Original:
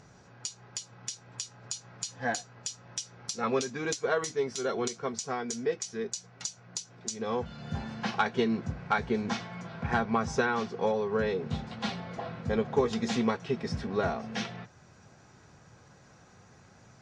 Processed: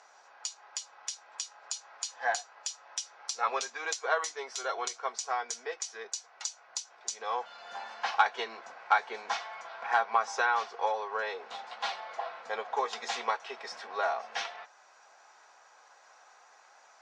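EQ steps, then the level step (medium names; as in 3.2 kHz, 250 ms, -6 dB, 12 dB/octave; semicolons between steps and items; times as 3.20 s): ladder high-pass 640 Hz, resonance 35%; low-pass 9.7 kHz; +8.0 dB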